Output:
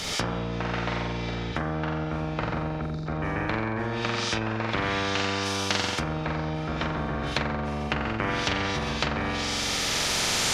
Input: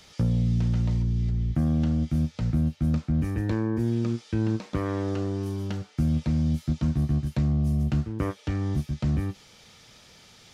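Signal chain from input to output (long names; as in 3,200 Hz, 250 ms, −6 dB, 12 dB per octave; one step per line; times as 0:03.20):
camcorder AGC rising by 7.8 dB per second
time-frequency box erased 0:02.81–0:03.06, 260–3,500 Hz
flutter between parallel walls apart 7.7 metres, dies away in 1 s
dynamic equaliser 150 Hz, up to +3 dB, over −29 dBFS, Q 0.84
in parallel at −1 dB: brickwall limiter −19 dBFS, peak gain reduction 10.5 dB
on the sum: treble cut that deepens with the level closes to 1,600 Hz, closed at −13.5 dBFS
every bin compressed towards the loudest bin 4 to 1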